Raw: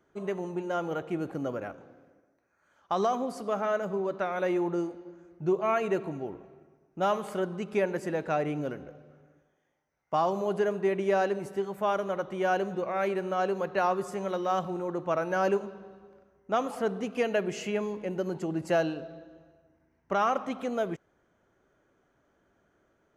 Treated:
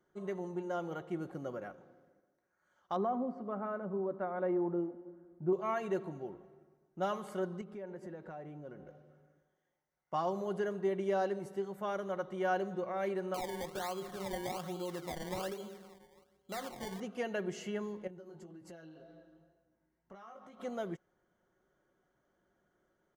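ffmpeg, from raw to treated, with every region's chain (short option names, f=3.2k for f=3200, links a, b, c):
-filter_complex "[0:a]asettb=1/sr,asplit=3[a][b][c];[a]atrim=end=2.964[d];[b]atrim=start=2.96:end=5.53,asetpts=PTS-STARTPTS,afade=t=in:d=0.004:c=qsin,afade=t=out:st=2.566:d=0.004:c=qsin,lowpass=1.3k,equalizer=f=250:w=4.4:g=9.5[e];[c]atrim=start=5.526[f];[d][e]acrossfade=d=0.004:c1=hsin:c2=qsin[g];[g][f]acrossfade=d=0.004:c1=qsin:c2=hsin,asettb=1/sr,asplit=3[h][i][j];[h]atrim=end=7.614[k];[i]atrim=start=7.61:end=8.87,asetpts=PTS-STARTPTS,afade=t=in:d=0.004:c=qsin,afade=t=out:st=1.256:d=0.004:c=qsin,highshelf=f=2.7k:g=-11.5,acompressor=threshold=-38dB:ratio=3:attack=3.2:release=140:knee=1:detection=peak[l];[j]atrim=start=8.866[m];[k][l]acrossfade=d=0.004:c1=hsin:c2=qsin[n];[n][m]acrossfade=d=0.004:c1=qsin:c2=hsin,asettb=1/sr,asplit=3[o][p][q];[o]atrim=end=13.344[r];[p]atrim=start=13.34:end=17,asetpts=PTS-STARTPTS,afade=t=in:d=0.004:c=qsin,afade=t=out:st=3.656:d=0.004:c=qsin,acompressor=threshold=-28dB:ratio=5:attack=3.2:release=140:knee=1:detection=peak,bandreject=f=50:t=h:w=6,bandreject=f=100:t=h:w=6,bandreject=f=150:t=h:w=6,bandreject=f=200:t=h:w=6,bandreject=f=250:t=h:w=6,bandreject=f=300:t=h:w=6,bandreject=f=350:t=h:w=6,bandreject=f=400:t=h:w=6,bandreject=f=450:t=h:w=6,bandreject=f=500:t=h:w=6,acrusher=samples=23:mix=1:aa=0.000001:lfo=1:lforange=23:lforate=1.2[s];[q]atrim=start=16.996[t];[r][s]acrossfade=d=0.004:c1=hsin:c2=qsin[u];[u][t]acrossfade=d=0.004:c1=qsin:c2=hsin,asettb=1/sr,asplit=3[v][w][x];[v]atrim=end=18.074[y];[w]atrim=start=18.07:end=20.6,asetpts=PTS-STARTPTS,afade=t=in:d=0.004:c=qsin,afade=t=out:st=2.526:d=0.004:c=qsin,flanger=delay=16:depth=3.2:speed=1.9,acompressor=threshold=-42dB:ratio=8:attack=3.2:release=140:knee=1:detection=peak[z];[x]atrim=start=20.596[aa];[y][z]acrossfade=d=0.004:c1=hsin:c2=qsin[ab];[ab][aa]acrossfade=d=0.004:c1=qsin:c2=hsin,bandreject=f=2.5k:w=6.6,aecho=1:1:5.5:0.39,volume=-8dB"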